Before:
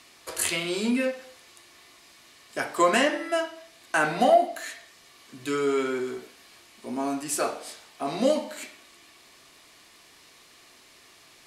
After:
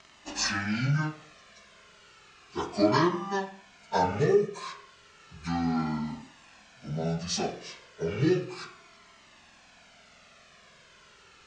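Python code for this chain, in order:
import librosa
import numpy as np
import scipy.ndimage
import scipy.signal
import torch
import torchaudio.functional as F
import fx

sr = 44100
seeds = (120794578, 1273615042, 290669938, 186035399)

y = fx.pitch_bins(x, sr, semitones=-9.0)
y = fx.comb_cascade(y, sr, direction='falling', hz=0.33)
y = y * 10.0 ** (4.5 / 20.0)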